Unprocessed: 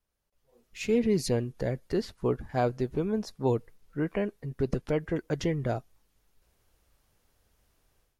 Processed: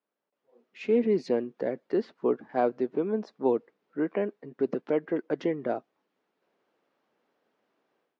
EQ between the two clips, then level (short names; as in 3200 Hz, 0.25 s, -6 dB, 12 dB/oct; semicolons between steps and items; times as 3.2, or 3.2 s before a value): HPF 240 Hz 24 dB/oct; air absorption 67 m; tape spacing loss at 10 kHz 27 dB; +4.0 dB